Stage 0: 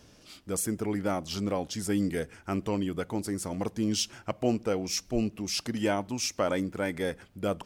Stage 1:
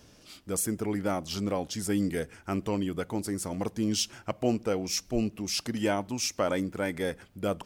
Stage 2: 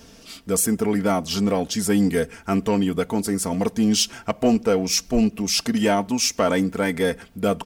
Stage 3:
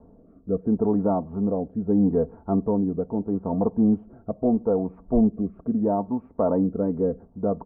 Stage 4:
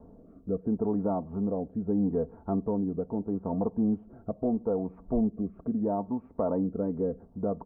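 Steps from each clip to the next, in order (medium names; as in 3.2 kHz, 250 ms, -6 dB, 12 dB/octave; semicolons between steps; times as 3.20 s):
treble shelf 11 kHz +4 dB
comb 4.4 ms, depth 54%; in parallel at -7 dB: hard clipper -24.5 dBFS, distortion -13 dB; on the sum: trim +5 dB
steep low-pass 1 kHz 36 dB/octave; rotary cabinet horn 0.75 Hz
compression 1.5:1, threshold -36 dBFS, peak gain reduction 7.5 dB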